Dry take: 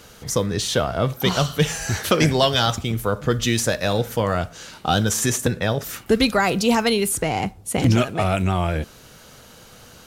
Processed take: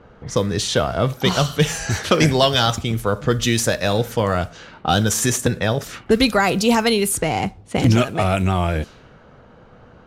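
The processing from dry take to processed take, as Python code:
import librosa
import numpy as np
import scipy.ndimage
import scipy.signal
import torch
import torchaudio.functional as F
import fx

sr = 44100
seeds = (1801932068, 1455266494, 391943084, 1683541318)

y = fx.env_lowpass(x, sr, base_hz=1100.0, full_db=-18.5)
y = y * librosa.db_to_amplitude(2.0)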